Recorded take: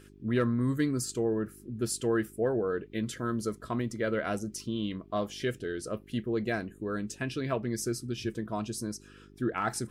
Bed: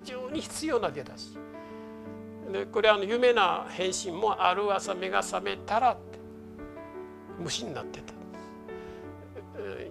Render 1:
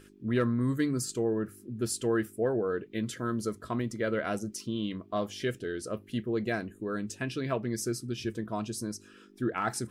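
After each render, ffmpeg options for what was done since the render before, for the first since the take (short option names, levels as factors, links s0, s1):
-af "bandreject=f=50:t=h:w=4,bandreject=f=100:t=h:w=4,bandreject=f=150:t=h:w=4"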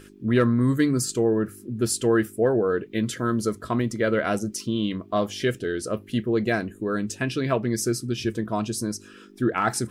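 -af "volume=2.37"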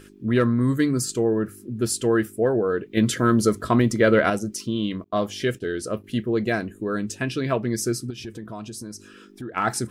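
-filter_complex "[0:a]asettb=1/sr,asplit=3[s0][s1][s2];[s0]atrim=end=2.974[s3];[s1]atrim=start=2.97:end=4.3,asetpts=PTS-STARTPTS,afade=t=in:d=0.004:c=qsin,afade=t=out:st=1.326:d=0.004:c=qsin,acontrast=51[s4];[s2]atrim=start=4.296[s5];[s3][s4]acrossfade=d=0.004:c1=hsin:c2=qsin[s6];[s6][s5]acrossfade=d=0.004:c1=qsin:c2=hsin,asettb=1/sr,asplit=3[s7][s8][s9];[s7]atrim=end=5.044[s10];[s8]atrim=start=5.04:end=6.04,asetpts=PTS-STARTPTS,afade=t=in:d=0.004:c=qsin,afade=t=out:st=0.996:d=0.004:c=qsin,agate=range=0.0224:threshold=0.0126:ratio=3:release=100:detection=peak[s11];[s9]atrim=start=6.036[s12];[s10][s11]acrossfade=d=0.004:c1=hsin:c2=qsin[s13];[s13][s12]acrossfade=d=0.004:c1=qsin:c2=hsin,asettb=1/sr,asplit=3[s14][s15][s16];[s14]atrim=end=8.104[s17];[s15]atrim=start=8.1:end=9.57,asetpts=PTS-STARTPTS,afade=t=in:d=0.004:c=qsin,afade=t=out:st=1.466:d=0.004:c=qsin,acompressor=threshold=0.02:ratio=3:attack=3.2:release=140:knee=1:detection=peak[s18];[s16]atrim=start=9.566[s19];[s17][s18]acrossfade=d=0.004:c1=hsin:c2=qsin[s20];[s20][s19]acrossfade=d=0.004:c1=qsin:c2=hsin"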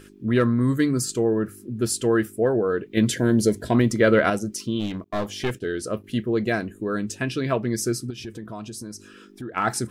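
-filter_complex "[0:a]asettb=1/sr,asplit=3[s0][s1][s2];[s0]atrim=end=3.074[s3];[s1]atrim=start=3.07:end=3.75,asetpts=PTS-STARTPTS,afade=t=in:d=0.004:c=qsin,afade=t=out:st=0.676:d=0.004:c=qsin,asuperstop=centerf=1200:order=4:qfactor=2[s4];[s2]atrim=start=3.746[s5];[s3][s4]acrossfade=d=0.004:c1=hsin:c2=qsin[s6];[s6][s5]acrossfade=d=0.004:c1=qsin:c2=hsin,asplit=3[s7][s8][s9];[s7]afade=t=out:st=4.79:d=0.02[s10];[s8]aeval=exprs='clip(val(0),-1,0.0398)':c=same,afade=t=in:st=4.79:d=0.02,afade=t=out:st=5.53:d=0.02[s11];[s9]afade=t=in:st=5.53:d=0.02[s12];[s10][s11][s12]amix=inputs=3:normalize=0"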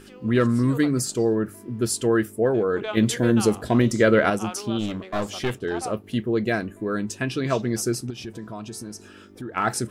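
-filter_complex "[1:a]volume=0.316[s0];[0:a][s0]amix=inputs=2:normalize=0"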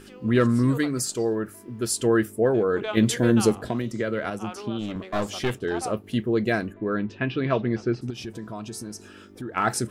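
-filter_complex "[0:a]asettb=1/sr,asplit=3[s0][s1][s2];[s0]atrim=end=0.784[s3];[s1]atrim=start=0.78:end=1.99,asetpts=PTS-STARTPTS,afade=t=in:d=0.004:c=qsin,afade=t=out:st=1.206:d=0.004:c=qsin,equalizer=f=150:w=0.4:g=-6[s4];[s2]atrim=start=1.986[s5];[s3][s4]acrossfade=d=0.004:c1=hsin:c2=qsin[s6];[s6][s5]acrossfade=d=0.004:c1=qsin:c2=hsin,asettb=1/sr,asplit=3[s7][s8][s9];[s7]atrim=end=3.514[s10];[s8]atrim=start=3.51:end=4.96,asetpts=PTS-STARTPTS,afade=t=in:d=0.004:c=qsin,afade=t=out:st=1.446:d=0.004:c=qsin,acrossover=split=94|3700[s11][s12][s13];[s11]acompressor=threshold=0.00501:ratio=4[s14];[s12]acompressor=threshold=0.0501:ratio=4[s15];[s13]acompressor=threshold=0.00282:ratio=4[s16];[s14][s15][s16]amix=inputs=3:normalize=0[s17];[s9]atrim=start=4.956[s18];[s10][s17]acrossfade=d=0.004:c1=hsin:c2=qsin[s19];[s19][s18]acrossfade=d=0.004:c1=qsin:c2=hsin,asplit=3[s20][s21][s22];[s20]afade=t=out:st=6.72:d=0.02[s23];[s21]lowpass=f=3400:w=0.5412,lowpass=f=3400:w=1.3066,afade=t=in:st=6.72:d=0.02,afade=t=out:st=8.01:d=0.02[s24];[s22]afade=t=in:st=8.01:d=0.02[s25];[s23][s24][s25]amix=inputs=3:normalize=0"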